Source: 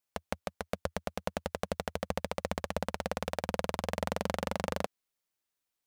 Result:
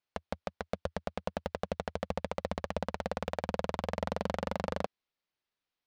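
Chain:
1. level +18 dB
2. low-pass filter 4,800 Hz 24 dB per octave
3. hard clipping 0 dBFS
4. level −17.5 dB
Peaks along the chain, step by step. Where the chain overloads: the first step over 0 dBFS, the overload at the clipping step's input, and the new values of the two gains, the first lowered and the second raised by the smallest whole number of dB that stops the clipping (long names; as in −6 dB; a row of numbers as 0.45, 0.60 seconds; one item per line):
+5.0, +5.5, 0.0, −17.5 dBFS
step 1, 5.5 dB
step 1 +12 dB, step 4 −11.5 dB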